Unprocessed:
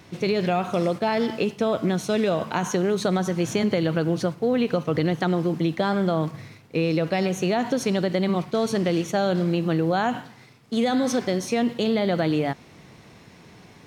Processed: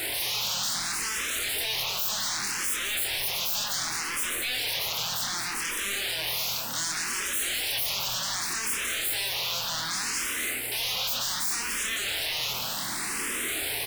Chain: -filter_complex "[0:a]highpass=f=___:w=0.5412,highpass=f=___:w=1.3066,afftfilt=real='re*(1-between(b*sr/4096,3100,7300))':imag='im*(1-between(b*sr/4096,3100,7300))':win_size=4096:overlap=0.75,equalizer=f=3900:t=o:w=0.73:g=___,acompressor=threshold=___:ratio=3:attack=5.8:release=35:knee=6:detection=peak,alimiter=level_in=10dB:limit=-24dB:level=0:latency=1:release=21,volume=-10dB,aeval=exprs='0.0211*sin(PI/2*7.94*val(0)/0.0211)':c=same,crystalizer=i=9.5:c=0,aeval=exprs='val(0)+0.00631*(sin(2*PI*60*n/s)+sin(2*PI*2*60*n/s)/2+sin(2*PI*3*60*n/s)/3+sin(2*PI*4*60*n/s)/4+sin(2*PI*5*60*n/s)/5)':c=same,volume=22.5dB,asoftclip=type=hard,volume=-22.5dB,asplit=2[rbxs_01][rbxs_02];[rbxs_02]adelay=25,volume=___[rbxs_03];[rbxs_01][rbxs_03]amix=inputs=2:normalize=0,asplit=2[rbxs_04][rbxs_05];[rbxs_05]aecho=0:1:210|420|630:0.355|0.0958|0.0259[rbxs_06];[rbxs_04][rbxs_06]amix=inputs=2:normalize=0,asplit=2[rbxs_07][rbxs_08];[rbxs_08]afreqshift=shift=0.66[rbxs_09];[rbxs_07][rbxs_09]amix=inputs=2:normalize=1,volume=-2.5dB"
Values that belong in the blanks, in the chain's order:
240, 240, -3, -44dB, -5dB